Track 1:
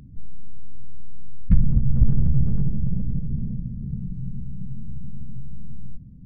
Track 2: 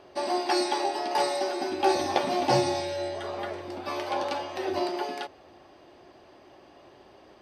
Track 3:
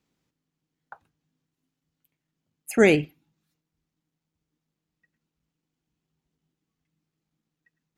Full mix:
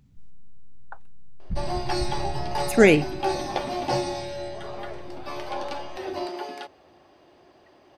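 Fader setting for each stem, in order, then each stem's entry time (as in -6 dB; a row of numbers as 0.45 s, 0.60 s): -14.0 dB, -2.5 dB, +2.0 dB; 0.00 s, 1.40 s, 0.00 s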